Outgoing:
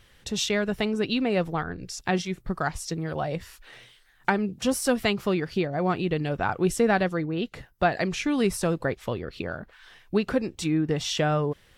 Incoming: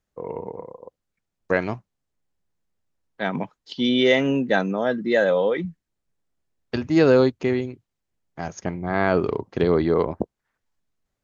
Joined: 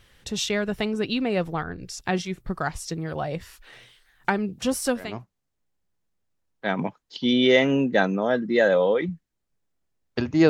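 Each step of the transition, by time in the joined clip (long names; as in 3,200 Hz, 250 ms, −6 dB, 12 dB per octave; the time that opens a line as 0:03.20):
outgoing
0:05.08: continue with incoming from 0:01.64, crossfade 0.40 s quadratic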